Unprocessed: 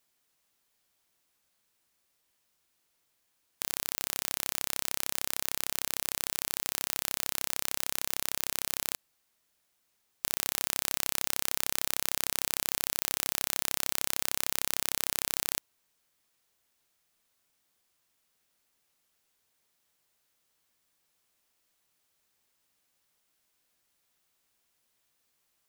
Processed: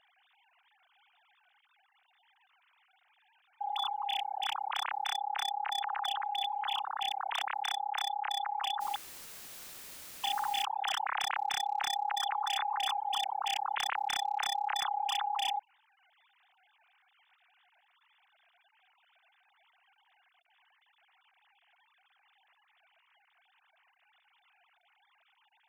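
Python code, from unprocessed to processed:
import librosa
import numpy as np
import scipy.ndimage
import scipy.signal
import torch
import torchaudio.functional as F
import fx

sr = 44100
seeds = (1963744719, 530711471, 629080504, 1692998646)

y = fx.sine_speech(x, sr)
y = 10.0 ** (-25.0 / 20.0) * (np.abs((y / 10.0 ** (-25.0 / 20.0) + 3.0) % 4.0 - 2.0) - 1.0)
y = fx.quant_dither(y, sr, seeds[0], bits=8, dither='triangular', at=(8.8, 10.62), fade=0.02)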